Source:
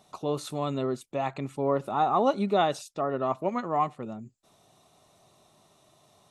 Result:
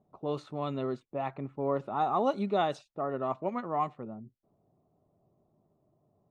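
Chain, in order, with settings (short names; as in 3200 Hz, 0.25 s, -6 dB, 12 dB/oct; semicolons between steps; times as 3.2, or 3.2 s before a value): low-pass opened by the level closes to 440 Hz, open at -20 dBFS; high shelf 3400 Hz +6 dB, from 1 s -3.5 dB; gain -4 dB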